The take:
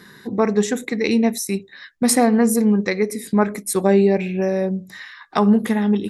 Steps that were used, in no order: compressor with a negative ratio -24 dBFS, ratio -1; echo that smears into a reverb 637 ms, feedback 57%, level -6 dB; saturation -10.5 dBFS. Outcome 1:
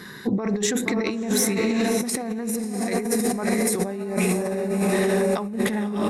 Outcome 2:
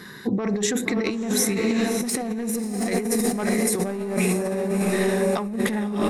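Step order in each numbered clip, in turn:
echo that smears into a reverb > compressor with a negative ratio > saturation; saturation > echo that smears into a reverb > compressor with a negative ratio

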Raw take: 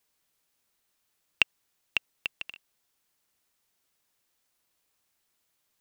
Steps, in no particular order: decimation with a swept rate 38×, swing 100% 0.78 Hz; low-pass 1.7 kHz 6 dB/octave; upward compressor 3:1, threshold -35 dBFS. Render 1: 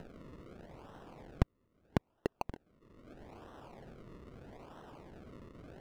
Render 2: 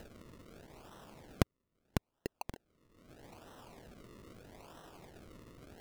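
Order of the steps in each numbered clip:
decimation with a swept rate > upward compressor > low-pass; low-pass > decimation with a swept rate > upward compressor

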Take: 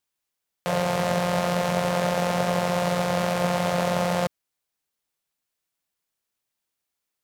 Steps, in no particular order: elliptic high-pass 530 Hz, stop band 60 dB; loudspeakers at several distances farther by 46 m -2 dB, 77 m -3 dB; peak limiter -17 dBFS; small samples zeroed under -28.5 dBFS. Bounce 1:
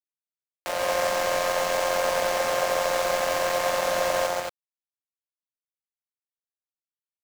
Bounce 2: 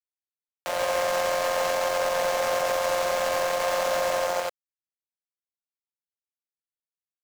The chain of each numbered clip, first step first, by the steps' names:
elliptic high-pass > peak limiter > small samples zeroed > loudspeakers at several distances; elliptic high-pass > small samples zeroed > loudspeakers at several distances > peak limiter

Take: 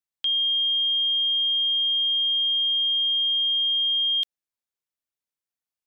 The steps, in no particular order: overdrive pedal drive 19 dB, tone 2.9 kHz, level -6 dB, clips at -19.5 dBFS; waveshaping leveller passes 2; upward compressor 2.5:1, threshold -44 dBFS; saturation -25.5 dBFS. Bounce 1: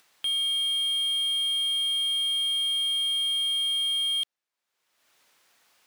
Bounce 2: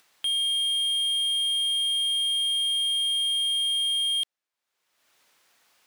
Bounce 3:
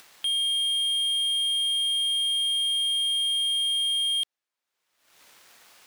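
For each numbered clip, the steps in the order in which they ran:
saturation > waveshaping leveller > overdrive pedal > upward compressor; saturation > overdrive pedal > waveshaping leveller > upward compressor; upward compressor > saturation > overdrive pedal > waveshaping leveller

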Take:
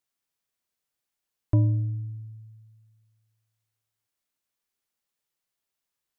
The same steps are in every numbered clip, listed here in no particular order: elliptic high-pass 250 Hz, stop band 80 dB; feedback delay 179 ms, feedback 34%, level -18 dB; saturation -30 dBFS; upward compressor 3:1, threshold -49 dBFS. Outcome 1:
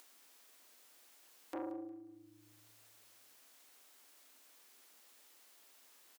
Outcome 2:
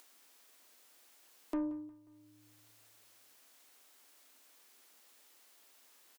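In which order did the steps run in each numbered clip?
saturation > elliptic high-pass > upward compressor > feedback delay; elliptic high-pass > saturation > feedback delay > upward compressor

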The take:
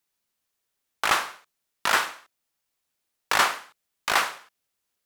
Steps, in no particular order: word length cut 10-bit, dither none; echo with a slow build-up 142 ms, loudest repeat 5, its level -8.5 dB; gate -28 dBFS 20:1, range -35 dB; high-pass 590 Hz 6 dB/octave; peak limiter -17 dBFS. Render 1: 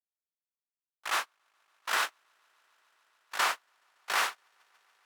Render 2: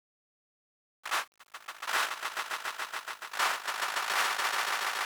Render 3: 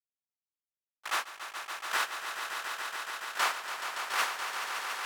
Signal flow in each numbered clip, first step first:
word length cut > high-pass > peak limiter > echo with a slow build-up > gate; echo with a slow build-up > peak limiter > high-pass > gate > word length cut; peak limiter > high-pass > word length cut > gate > echo with a slow build-up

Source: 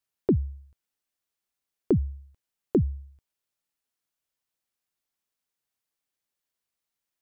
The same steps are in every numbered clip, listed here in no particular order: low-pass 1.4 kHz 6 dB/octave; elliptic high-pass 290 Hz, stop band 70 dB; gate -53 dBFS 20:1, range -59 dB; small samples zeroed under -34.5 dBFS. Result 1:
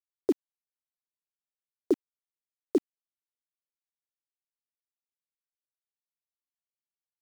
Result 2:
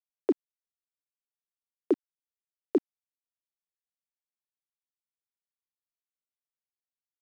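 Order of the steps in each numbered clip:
elliptic high-pass > gate > low-pass > small samples zeroed; gate > elliptic high-pass > small samples zeroed > low-pass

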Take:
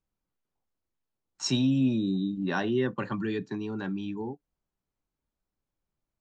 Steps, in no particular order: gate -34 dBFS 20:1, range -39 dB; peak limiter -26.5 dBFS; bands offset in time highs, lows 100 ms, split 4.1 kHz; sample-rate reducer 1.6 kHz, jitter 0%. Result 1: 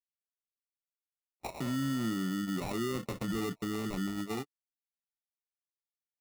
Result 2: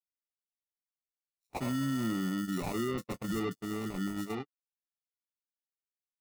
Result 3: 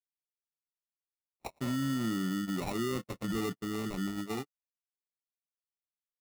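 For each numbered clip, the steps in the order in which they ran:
gate > peak limiter > bands offset in time > sample-rate reducer; sample-rate reducer > peak limiter > bands offset in time > gate; bands offset in time > sample-rate reducer > peak limiter > gate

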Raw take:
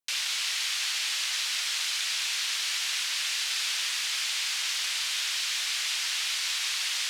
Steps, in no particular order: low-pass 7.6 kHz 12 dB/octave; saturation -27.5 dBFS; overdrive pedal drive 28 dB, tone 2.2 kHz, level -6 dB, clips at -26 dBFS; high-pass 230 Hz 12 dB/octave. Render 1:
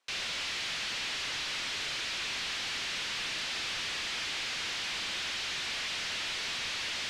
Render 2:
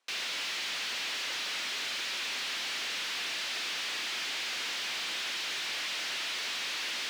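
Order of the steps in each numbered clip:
high-pass > overdrive pedal > low-pass > saturation; low-pass > overdrive pedal > high-pass > saturation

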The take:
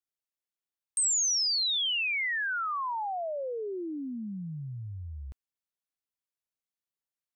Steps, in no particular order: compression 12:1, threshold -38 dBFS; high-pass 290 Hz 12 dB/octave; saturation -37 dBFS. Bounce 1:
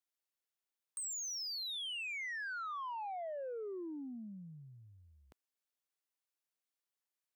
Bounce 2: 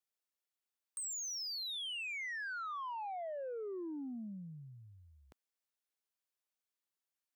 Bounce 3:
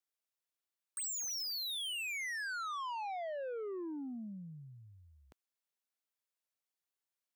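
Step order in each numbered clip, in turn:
compression > high-pass > saturation; high-pass > compression > saturation; high-pass > saturation > compression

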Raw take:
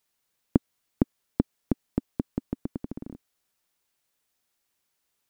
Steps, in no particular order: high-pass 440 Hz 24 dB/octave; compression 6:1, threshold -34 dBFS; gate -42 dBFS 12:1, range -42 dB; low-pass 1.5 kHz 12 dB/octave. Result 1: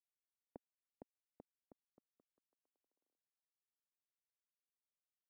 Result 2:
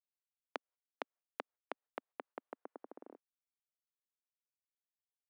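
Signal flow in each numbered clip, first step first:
compression > high-pass > gate > low-pass; gate > low-pass > compression > high-pass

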